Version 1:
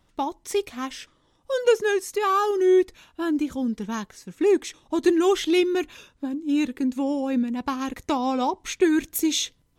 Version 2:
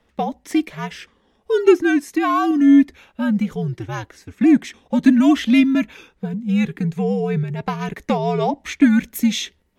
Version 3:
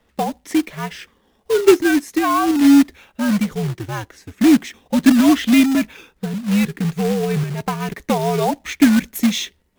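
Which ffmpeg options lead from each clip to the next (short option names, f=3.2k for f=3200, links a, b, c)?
-af "afreqshift=-90,equalizer=f=250:t=o:w=1:g=6,equalizer=f=500:t=o:w=1:g=8,equalizer=f=2k:t=o:w=1:g=8,equalizer=f=8k:t=o:w=1:g=-3,volume=-1dB"
-af "acrusher=bits=3:mode=log:mix=0:aa=0.000001,volume=1dB"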